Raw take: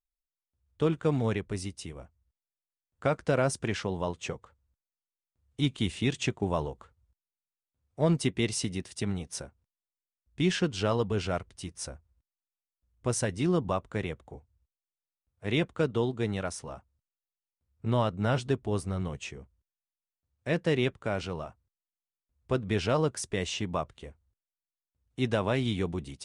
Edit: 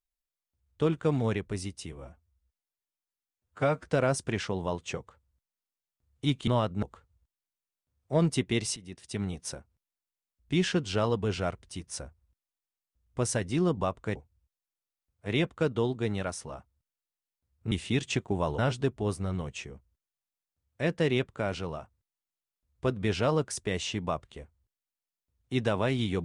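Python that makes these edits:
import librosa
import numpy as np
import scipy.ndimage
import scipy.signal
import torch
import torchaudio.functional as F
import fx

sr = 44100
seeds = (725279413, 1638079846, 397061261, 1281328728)

y = fx.edit(x, sr, fx.stretch_span(start_s=1.92, length_s=1.29, factor=1.5),
    fx.swap(start_s=5.83, length_s=0.87, other_s=17.9, other_length_s=0.35),
    fx.fade_in_from(start_s=8.64, length_s=0.52, floor_db=-18.5),
    fx.cut(start_s=14.03, length_s=0.31), tone=tone)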